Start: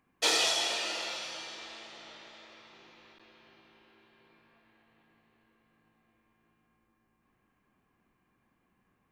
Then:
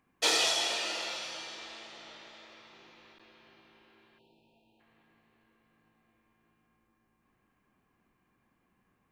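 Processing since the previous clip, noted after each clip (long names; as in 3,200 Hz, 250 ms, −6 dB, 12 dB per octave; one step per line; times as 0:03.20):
time-frequency box erased 0:04.19–0:04.80, 960–2,400 Hz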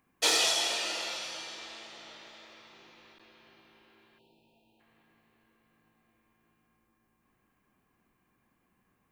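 high-shelf EQ 8,600 Hz +7.5 dB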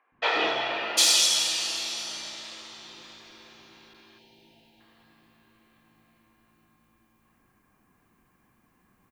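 three-band delay without the direct sound mids, lows, highs 120/750 ms, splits 470/2,700 Hz
level +8 dB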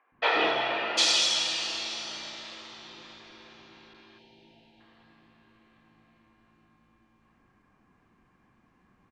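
high-frequency loss of the air 120 metres
level +1.5 dB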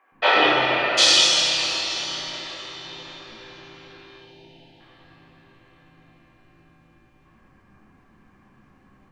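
rectangular room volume 140 cubic metres, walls mixed, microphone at 1.1 metres
level +4.5 dB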